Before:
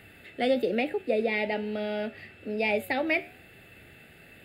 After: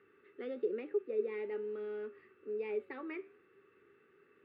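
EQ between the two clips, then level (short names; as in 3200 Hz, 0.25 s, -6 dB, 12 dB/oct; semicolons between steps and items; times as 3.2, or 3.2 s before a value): double band-pass 680 Hz, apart 1.5 oct; air absorption 78 m; -1.0 dB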